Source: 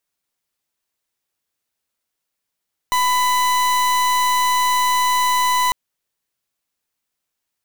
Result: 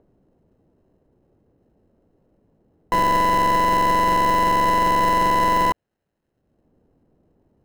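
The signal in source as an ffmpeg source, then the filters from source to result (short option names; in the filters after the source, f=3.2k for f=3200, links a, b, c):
-f lavfi -i "aevalsrc='0.141*(2*lt(mod(998*t,1),0.39)-1)':d=2.8:s=44100"
-filter_complex "[0:a]acrossover=split=510|2200[a][b][c];[a]acompressor=mode=upward:threshold=-35dB:ratio=2.5[d];[c]acrusher=samples=38:mix=1:aa=0.000001[e];[d][b][e]amix=inputs=3:normalize=0"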